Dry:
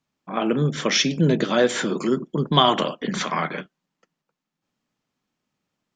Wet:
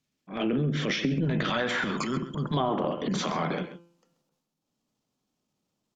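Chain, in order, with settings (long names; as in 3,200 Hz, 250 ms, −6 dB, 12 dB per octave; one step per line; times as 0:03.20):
low-shelf EQ 270 Hz −2.5 dB
hum removal 171.2 Hz, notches 18
transient designer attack −8 dB, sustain +7 dB
parametric band 1,000 Hz −11 dB 1.5 octaves, from 0:01.25 390 Hz, from 0:02.54 1,800 Hz
treble cut that deepens with the level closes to 1,400 Hz, closed at −19 dBFS
slap from a distant wall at 23 metres, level −13 dB
downward compressor 6 to 1, threshold −25 dBFS, peak gain reduction 8.5 dB
level +2 dB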